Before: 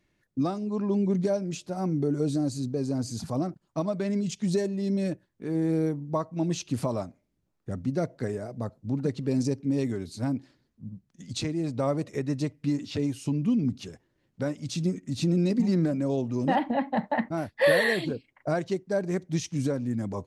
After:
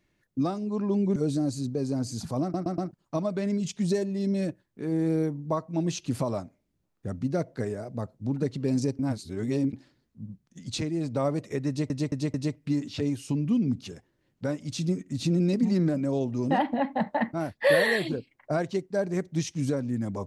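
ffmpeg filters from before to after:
-filter_complex "[0:a]asplit=10[a][b][c][d][e][f][g][h][i][j];[a]atrim=end=1.162[k];[b]atrim=start=2.148:end=3.532[l];[c]atrim=start=3.408:end=3.532[m];[d]atrim=start=3.408:end=3.532[n];[e]atrim=start=3.408:end=9.622[o];[f]atrim=start=9.618:end=10.362,asetpts=PTS-STARTPTS,areverse[p];[g]atrim=start=10.358:end=12.532[q];[h]atrim=start=12.308:end=12.532[r];[i]atrim=start=12.308:end=12.532[s];[j]atrim=start=12.308[t];[k][l]acrossfade=d=0.004:c1=hsin:c2=hsin[u];[u][m]acrossfade=d=0.004:c1=hsin:c2=hsin[v];[v][n]acrossfade=d=0.004:c1=hsin:c2=hsin[w];[w][o]acrossfade=d=0.004:c1=hsin:c2=hsin[x];[x][p]acrossfade=d=0.004:c1=hsin:c2=hsin[y];[y][q]acrossfade=d=0.004:c1=hsin:c2=hsin[z];[z][r]acrossfade=d=0.004:c1=hsin:c2=hsin[aa];[aa][s]acrossfade=d=0.004:c1=hsin:c2=hsin[ab];[ab][t]acrossfade=d=0.004:c1=hsin:c2=hsin"

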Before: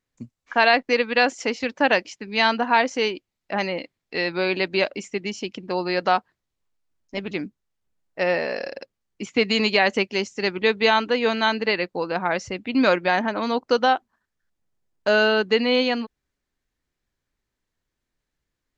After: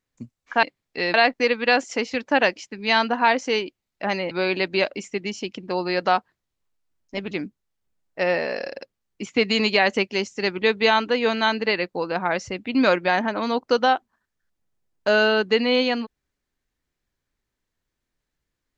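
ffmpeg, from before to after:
-filter_complex "[0:a]asplit=4[a][b][c][d];[a]atrim=end=0.632[e];[b]atrim=start=3.798:end=4.312[f];[c]atrim=start=0.628:end=3.802[g];[d]atrim=start=4.308[h];[e][f]acrossfade=d=0.004:c1=hsin:c2=hsin[i];[i][g]acrossfade=d=0.004:c1=hsin:c2=hsin[j];[j][h]acrossfade=d=0.004:c1=hsin:c2=hsin"

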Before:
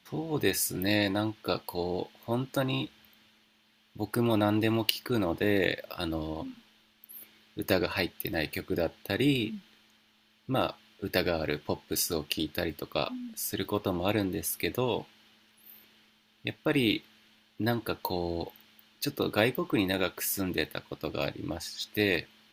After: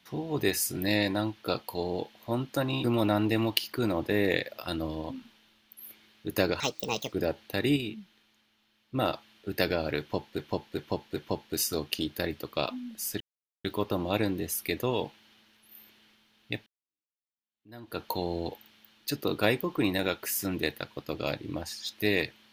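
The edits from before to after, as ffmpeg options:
-filter_complex "[0:a]asplit=11[a][b][c][d][e][f][g][h][i][j][k];[a]atrim=end=2.842[l];[b]atrim=start=4.158:end=7.924[m];[c]atrim=start=7.92:end=8.68,asetpts=PTS-STARTPTS,asetrate=63945,aresample=44100,atrim=end_sample=23114,asetpts=PTS-STARTPTS[n];[d]atrim=start=8.676:end=9.322[o];[e]atrim=start=9.318:end=10.502,asetpts=PTS-STARTPTS,volume=-5dB[p];[f]atrim=start=10.498:end=11.942[q];[g]atrim=start=11.548:end=11.942[r];[h]atrim=start=11.548:end=11.942[s];[i]atrim=start=11.548:end=13.59,asetpts=PTS-STARTPTS,afade=t=out:st=2.038:d=0.004:c=hsin,apad=pad_dur=0.44[t];[j]atrim=start=13.59:end=16.61,asetpts=PTS-STARTPTS,afade=t=in:d=0.004:c=hsin,afade=t=out:st=3.016:d=0.004:c=hsin[u];[k]atrim=start=16.61,asetpts=PTS-STARTPTS,afade=t=in:d=1.34:c=exp[v];[l][m]acrossfade=d=0.004:c1=hsin:c2=hsin[w];[w][n]acrossfade=d=0.004:c1=hsin:c2=hsin[x];[x][o]acrossfade=d=0.004:c1=hsin:c2=hsin[y];[y][p]acrossfade=d=0.004:c1=hsin:c2=hsin[z];[z][q]acrossfade=d=0.004:c1=hsin:c2=hsin[aa];[aa][r]acrossfade=d=0.004:c1=hsin:c2=hsin[ab];[ab][s]acrossfade=d=0.004:c1=hsin:c2=hsin[ac];[t][u][v]concat=n=3:v=0:a=1[ad];[ac][ad]acrossfade=d=0.004:c1=hsin:c2=hsin"

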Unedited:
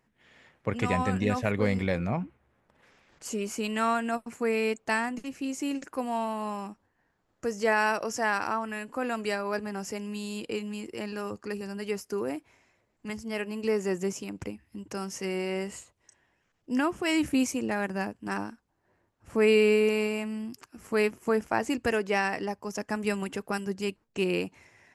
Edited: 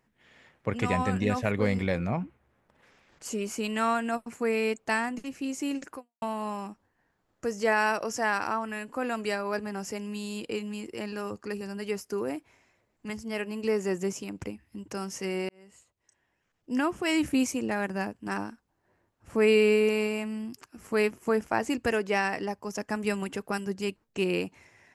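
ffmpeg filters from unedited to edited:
-filter_complex "[0:a]asplit=3[a][b][c];[a]atrim=end=6.22,asetpts=PTS-STARTPTS,afade=t=out:st=5.96:d=0.26:c=exp[d];[b]atrim=start=6.22:end=15.49,asetpts=PTS-STARTPTS,afade=t=in:d=0.004:c=hsin,afade=t=out:st=9.266:d=0.004:c=hsin[e];[c]atrim=start=15.49,asetpts=PTS-STARTPTS,afade=t=in:d=1.41[f];[d][e][f]concat=n=3:v=0:a=1"

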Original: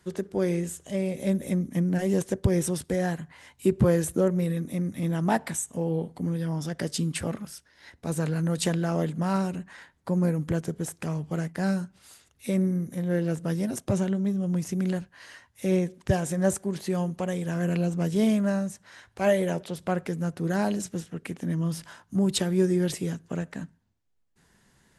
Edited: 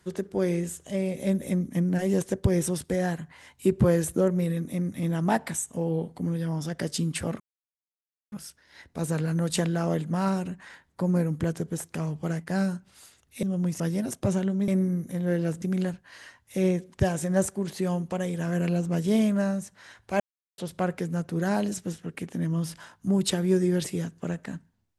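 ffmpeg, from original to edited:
-filter_complex "[0:a]asplit=8[a][b][c][d][e][f][g][h];[a]atrim=end=7.4,asetpts=PTS-STARTPTS,afade=t=out:st=7.396:d=0.004:c=hsin,apad=pad_dur=0.92[i];[b]atrim=start=7.4:end=12.512,asetpts=PTS-STARTPTS,afade=t=in:d=0.004:c=hsin[j];[c]atrim=start=14.328:end=14.702[k];[d]atrim=start=13.448:end=14.332[l];[e]atrim=start=12.508:end=13.452[m];[f]atrim=start=14.698:end=19.28,asetpts=PTS-STARTPTS,afade=t=out:st=4.578:d=0.004:c=hsin[n];[g]atrim=start=19.28:end=19.66,asetpts=PTS-STARTPTS,volume=0[o];[h]atrim=start=19.66,asetpts=PTS-STARTPTS,afade=t=in:d=0.004:c=hsin[p];[i][j]concat=n=2:v=0:a=1[q];[q][k]acrossfade=d=0.004:c1=hsin:c2=hsin[r];[r][l]acrossfade=d=0.004:c1=hsin:c2=hsin[s];[s][m]acrossfade=d=0.004:c1=hsin:c2=hsin[t];[n][o][p]concat=n=3:v=0:a=1[u];[t][u]acrossfade=d=0.004:c1=hsin:c2=hsin"

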